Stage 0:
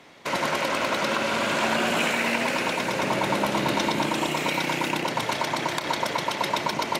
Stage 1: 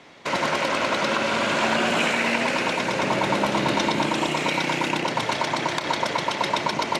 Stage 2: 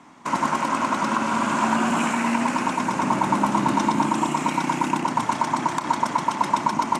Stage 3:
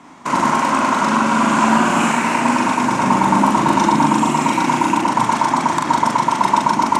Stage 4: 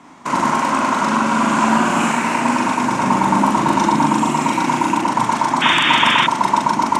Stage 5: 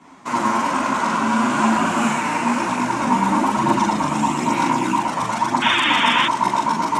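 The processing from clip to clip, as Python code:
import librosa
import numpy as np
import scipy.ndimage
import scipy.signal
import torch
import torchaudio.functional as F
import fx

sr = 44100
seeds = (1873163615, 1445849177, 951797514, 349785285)

y1 = scipy.signal.sosfilt(scipy.signal.butter(2, 8100.0, 'lowpass', fs=sr, output='sos'), x)
y1 = y1 * librosa.db_to_amplitude(2.0)
y2 = fx.graphic_eq_10(y1, sr, hz=(250, 500, 1000, 2000, 4000, 8000), db=(11, -11, 11, -4, -9, 8))
y2 = y2 * librosa.db_to_amplitude(-3.0)
y3 = fx.doubler(y2, sr, ms=41.0, db=-2.5)
y3 = y3 * librosa.db_to_amplitude(5.0)
y4 = fx.spec_paint(y3, sr, seeds[0], shape='noise', start_s=5.61, length_s=0.66, low_hz=1000.0, high_hz=3700.0, level_db=-15.0)
y4 = y4 * librosa.db_to_amplitude(-1.0)
y5 = fx.chorus_voices(y4, sr, voices=2, hz=0.54, base_ms=13, depth_ms=4.7, mix_pct=60)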